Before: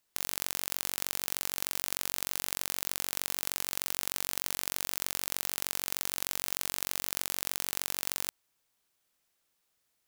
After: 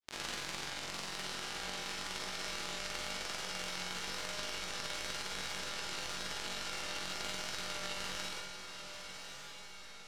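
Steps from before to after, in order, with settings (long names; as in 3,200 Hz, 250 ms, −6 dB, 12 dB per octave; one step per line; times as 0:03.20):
speech leveller
on a send: feedback delay with all-pass diffusion 1,078 ms, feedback 56%, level −7.5 dB
on the sum: granular cloud 100 ms, pitch spread up and down by 0 semitones
low-pass filter 5,200 Hz 12 dB per octave
four-comb reverb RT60 0.65 s, DRR −6 dB
pitch vibrato 0.98 Hz 21 cents
level −6.5 dB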